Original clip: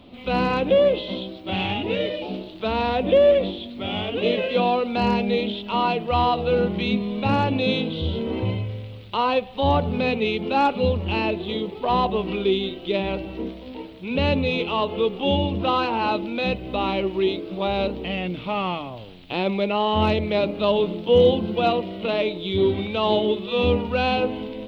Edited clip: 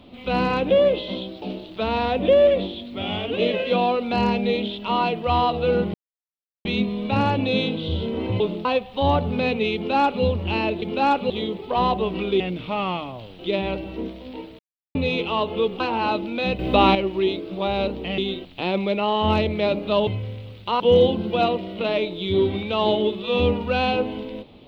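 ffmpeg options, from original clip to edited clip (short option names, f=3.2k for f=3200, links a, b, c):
-filter_complex "[0:a]asplit=18[a][b][c][d][e][f][g][h][i][j][k][l][m][n][o][p][q][r];[a]atrim=end=1.422[s];[b]atrim=start=2.258:end=6.78,asetpts=PTS-STARTPTS,afade=t=out:st=4.518:d=0.004:c=hsin,apad=pad_dur=0.71[t];[c]atrim=start=6.78:end=8.532,asetpts=PTS-STARTPTS,afade=t=in:d=0.004:c=hsin[u];[d]atrim=start=20.788:end=21.042[v];[e]atrim=start=9.258:end=11.432[w];[f]atrim=start=10.358:end=10.842[x];[g]atrim=start=11.428:end=12.532[y];[h]atrim=start=18.178:end=19.172[z];[i]atrim=start=12.798:end=14,asetpts=PTS-STARTPTS,afade=t=out:st=1.198:d=0.004:c=hsin[aa];[j]atrim=start=14:end=14.36,asetpts=PTS-STARTPTS,volume=0[ab];[k]atrim=start=14.36:end=15.212,asetpts=PTS-STARTPTS,afade=t=in:d=0.004:c=hsin[ac];[l]atrim=start=15.798:end=16.592[ad];[m]atrim=start=16.588:end=16.952,asetpts=PTS-STARTPTS,volume=8.5dB[ae];[n]atrim=start=16.948:end=18.182[af];[o]atrim=start=12.528:end=12.802[ag];[p]atrim=start=19.168:end=20.792[ah];[q]atrim=start=8.528:end=9.262[ai];[r]atrim=start=21.038[aj];[t][u]concat=n=2:v=0:a=1[ak];[s][ak]acrossfade=d=0.004:c1=hsin:c2=hsin[al];[al][v]acrossfade=d=0.004:c1=hsin:c2=hsin[am];[am][w]acrossfade=d=0.004:c1=hsin:c2=hsin[an];[an][x]acrossfade=d=0.004:c1=hsin:c2=hsin[ao];[ao][y]acrossfade=d=0.004:c1=hsin:c2=hsin[ap];[ap][z]acrossfade=d=0.004:c1=hsin:c2=hsin[aq];[aa][ab][ac]concat=n=3:v=0:a=1[ar];[aq][ar]acrossfade=d=0.004:c1=hsin:c2=hsin[as];[as][ad]acrossfade=d=0.004:c1=hsin:c2=hsin[at];[at][ae]acrossfade=d=0.004:c1=hsin:c2=hsin[au];[au][af]acrossfade=d=0.004:c1=hsin:c2=hsin[av];[av][ag]acrossfade=d=0.004:c1=hsin:c2=hsin[aw];[aw][ah]acrossfade=d=0.004:c1=hsin:c2=hsin[ax];[ax][ai]acrossfade=d=0.004:c1=hsin:c2=hsin[ay];[ay][aj]acrossfade=d=0.004:c1=hsin:c2=hsin"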